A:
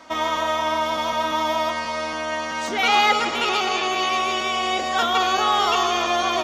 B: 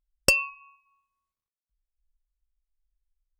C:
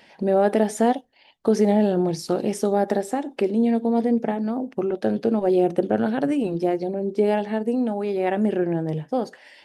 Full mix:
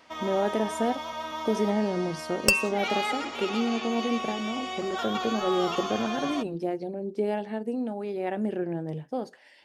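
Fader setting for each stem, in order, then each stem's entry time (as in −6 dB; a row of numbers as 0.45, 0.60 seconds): −12.0, −1.0, −7.5 decibels; 0.00, 2.20, 0.00 seconds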